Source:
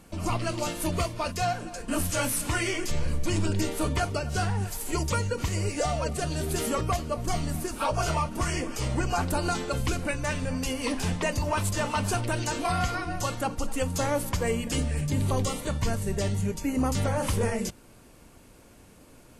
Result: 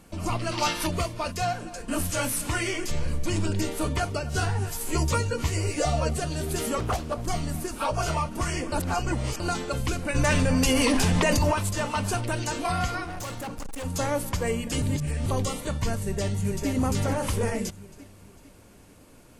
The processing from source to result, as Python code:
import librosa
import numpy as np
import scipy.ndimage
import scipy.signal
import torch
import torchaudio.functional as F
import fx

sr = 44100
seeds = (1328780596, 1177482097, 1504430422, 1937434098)

y = fx.spec_box(x, sr, start_s=0.52, length_s=0.34, low_hz=720.0, high_hz=6200.0, gain_db=9)
y = fx.doubler(y, sr, ms=13.0, db=-2.0, at=(4.33, 6.19))
y = fx.doppler_dist(y, sr, depth_ms=0.65, at=(6.8, 7.27))
y = fx.env_flatten(y, sr, amount_pct=100, at=(10.14, 11.52), fade=0.02)
y = fx.overload_stage(y, sr, gain_db=32.0, at=(13.04, 13.85))
y = fx.echo_throw(y, sr, start_s=15.99, length_s=0.69, ms=450, feedback_pct=45, wet_db=-4.0)
y = fx.edit(y, sr, fx.reverse_span(start_s=8.72, length_s=0.68),
    fx.reverse_span(start_s=14.82, length_s=0.44), tone=tone)